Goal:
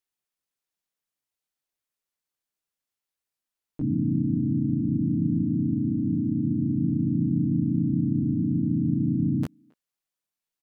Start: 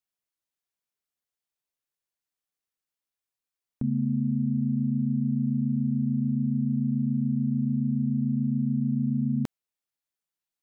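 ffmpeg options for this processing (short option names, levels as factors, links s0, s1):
-filter_complex "[0:a]asplit=4[s0][s1][s2][s3];[s1]asetrate=29433,aresample=44100,atempo=1.49831,volume=0.447[s4];[s2]asetrate=35002,aresample=44100,atempo=1.25992,volume=0.562[s5];[s3]asetrate=55563,aresample=44100,atempo=0.793701,volume=1[s6];[s0][s4][s5][s6]amix=inputs=4:normalize=0,asplit=2[s7][s8];[s8]adelay=270,highpass=300,lowpass=3400,asoftclip=type=hard:threshold=0.112,volume=0.0398[s9];[s7][s9]amix=inputs=2:normalize=0,volume=0.75"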